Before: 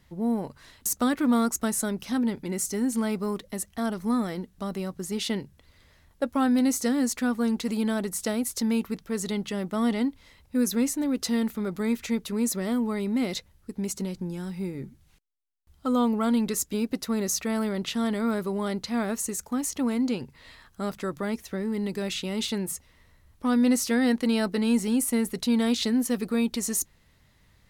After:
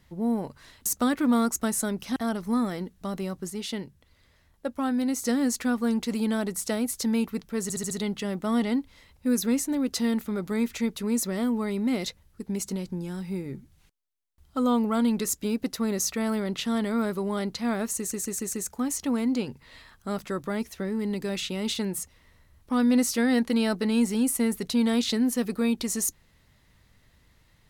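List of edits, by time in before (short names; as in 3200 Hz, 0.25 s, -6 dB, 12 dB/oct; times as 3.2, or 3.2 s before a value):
2.16–3.73 cut
5.07–6.79 gain -4 dB
9.2 stutter 0.07 s, 5 plays
19.26 stutter 0.14 s, 5 plays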